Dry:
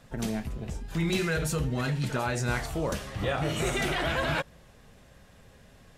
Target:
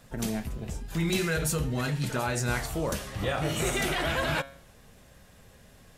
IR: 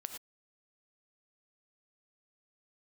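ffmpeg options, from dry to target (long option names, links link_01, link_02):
-af "highshelf=frequency=8200:gain=9,bandreject=frequency=137.4:width_type=h:width=4,bandreject=frequency=274.8:width_type=h:width=4,bandreject=frequency=412.2:width_type=h:width=4,bandreject=frequency=549.6:width_type=h:width=4,bandreject=frequency=687:width_type=h:width=4,bandreject=frequency=824.4:width_type=h:width=4,bandreject=frequency=961.8:width_type=h:width=4,bandreject=frequency=1099.2:width_type=h:width=4,bandreject=frequency=1236.6:width_type=h:width=4,bandreject=frequency=1374:width_type=h:width=4,bandreject=frequency=1511.4:width_type=h:width=4,bandreject=frequency=1648.8:width_type=h:width=4,bandreject=frequency=1786.2:width_type=h:width=4,bandreject=frequency=1923.6:width_type=h:width=4,bandreject=frequency=2061:width_type=h:width=4,bandreject=frequency=2198.4:width_type=h:width=4,bandreject=frequency=2335.8:width_type=h:width=4,bandreject=frequency=2473.2:width_type=h:width=4,bandreject=frequency=2610.6:width_type=h:width=4,bandreject=frequency=2748:width_type=h:width=4,bandreject=frequency=2885.4:width_type=h:width=4,bandreject=frequency=3022.8:width_type=h:width=4,bandreject=frequency=3160.2:width_type=h:width=4,bandreject=frequency=3297.6:width_type=h:width=4,bandreject=frequency=3435:width_type=h:width=4,bandreject=frequency=3572.4:width_type=h:width=4,bandreject=frequency=3709.8:width_type=h:width=4,bandreject=frequency=3847.2:width_type=h:width=4,bandreject=frequency=3984.6:width_type=h:width=4,bandreject=frequency=4122:width_type=h:width=4,bandreject=frequency=4259.4:width_type=h:width=4"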